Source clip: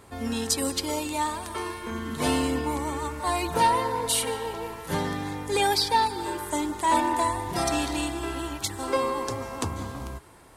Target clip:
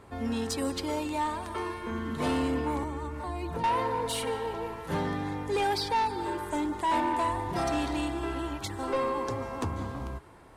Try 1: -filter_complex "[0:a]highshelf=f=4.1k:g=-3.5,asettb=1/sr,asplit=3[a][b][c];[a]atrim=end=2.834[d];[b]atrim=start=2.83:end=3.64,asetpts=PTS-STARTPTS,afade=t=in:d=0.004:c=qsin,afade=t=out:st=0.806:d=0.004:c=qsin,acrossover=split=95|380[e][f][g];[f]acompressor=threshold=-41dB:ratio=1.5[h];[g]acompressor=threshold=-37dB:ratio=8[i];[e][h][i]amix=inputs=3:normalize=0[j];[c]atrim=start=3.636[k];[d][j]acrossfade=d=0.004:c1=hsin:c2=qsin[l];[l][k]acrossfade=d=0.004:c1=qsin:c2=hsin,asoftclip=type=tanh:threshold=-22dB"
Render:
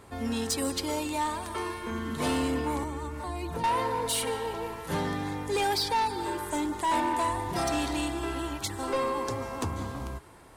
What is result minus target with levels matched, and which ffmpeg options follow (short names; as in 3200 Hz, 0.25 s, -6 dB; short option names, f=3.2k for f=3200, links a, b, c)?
8000 Hz band +6.0 dB
-filter_complex "[0:a]highshelf=f=4.1k:g=-13,asettb=1/sr,asplit=3[a][b][c];[a]atrim=end=2.834[d];[b]atrim=start=2.83:end=3.64,asetpts=PTS-STARTPTS,afade=t=in:d=0.004:c=qsin,afade=t=out:st=0.806:d=0.004:c=qsin,acrossover=split=95|380[e][f][g];[f]acompressor=threshold=-41dB:ratio=1.5[h];[g]acompressor=threshold=-37dB:ratio=8[i];[e][h][i]amix=inputs=3:normalize=0[j];[c]atrim=start=3.636[k];[d][j]acrossfade=d=0.004:c1=hsin:c2=qsin[l];[l][k]acrossfade=d=0.004:c1=qsin:c2=hsin,asoftclip=type=tanh:threshold=-22dB"